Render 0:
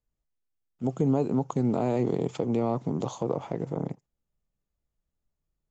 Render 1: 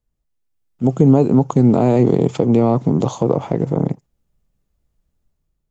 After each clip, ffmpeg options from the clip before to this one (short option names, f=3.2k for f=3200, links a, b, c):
-af "lowshelf=f=410:g=5.5,dynaudnorm=f=240:g=5:m=6dB,volume=3.5dB"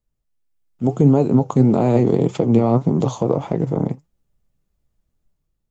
-af "flanger=delay=4.7:depth=5.7:regen=67:speed=1.7:shape=triangular,volume=2.5dB"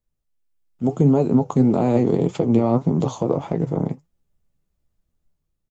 -filter_complex "[0:a]asplit=2[a][b];[b]adelay=12,volume=-11dB[c];[a][c]amix=inputs=2:normalize=0,volume=-2.5dB"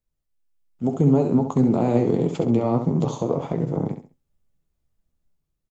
-af "aecho=1:1:67|134|201:0.398|0.111|0.0312,volume=-2.5dB"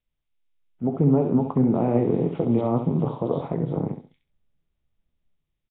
-filter_complex "[0:a]acrossover=split=3100[a][b];[b]adelay=250[c];[a][c]amix=inputs=2:normalize=0,volume=-1.5dB" -ar 8000 -c:a nellymoser